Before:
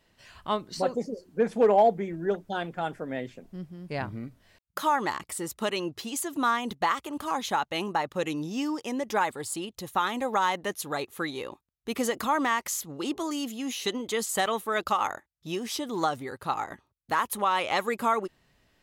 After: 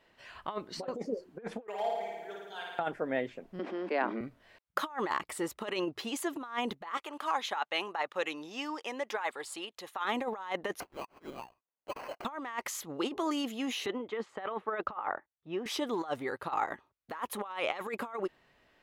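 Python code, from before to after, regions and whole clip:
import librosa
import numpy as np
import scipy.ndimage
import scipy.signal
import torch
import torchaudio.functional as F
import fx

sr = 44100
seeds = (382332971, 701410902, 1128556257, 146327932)

y = fx.chain(x, sr, fx.pre_emphasis(coefficient=0.97),
    fx.comb(ms=4.4, depth=0.54),
    fx.room_flutter(wall_m=9.5, rt60_s=1.4), at=(1.67, 2.79))
y = fx.chain(y, sr, fx.steep_highpass(hz=220.0, slope=72),
    fx.air_absorb(metres=150.0),
    fx.env_flatten(amount_pct=70), at=(3.59, 4.21))
y = fx.chain(y, sr, fx.highpass(hz=990.0, slope=6),
    fx.high_shelf(hz=11000.0, db=-6.0), at=(6.97, 10.05))
y = fx.chain(y, sr, fx.cheby1_bandpass(low_hz=2500.0, high_hz=5200.0, order=4),
    fx.sample_hold(seeds[0], rate_hz=3600.0, jitter_pct=0), at=(10.8, 12.25))
y = fx.chain(y, sr, fx.lowpass(hz=2000.0, slope=12),
    fx.band_widen(depth_pct=70), at=(13.86, 15.66))
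y = fx.over_compress(y, sr, threshold_db=-31.0, ratio=-0.5)
y = fx.bass_treble(y, sr, bass_db=-11, treble_db=-12)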